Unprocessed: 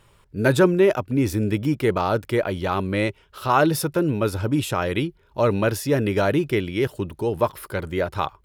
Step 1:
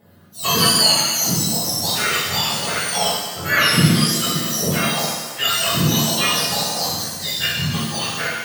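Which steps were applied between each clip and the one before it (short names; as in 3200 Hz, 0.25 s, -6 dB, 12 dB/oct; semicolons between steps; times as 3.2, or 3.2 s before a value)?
spectrum mirrored in octaves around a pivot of 1300 Hz; phaser 0.38 Hz, delay 5 ms, feedback 27%; shimmer reverb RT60 1.3 s, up +7 st, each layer -8 dB, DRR -6.5 dB; gain -1 dB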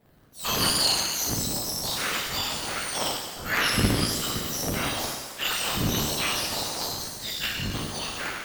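cycle switcher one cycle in 3, inverted; gain -8.5 dB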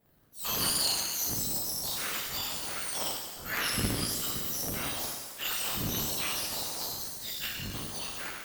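high shelf 8900 Hz +11.5 dB; gain -8.5 dB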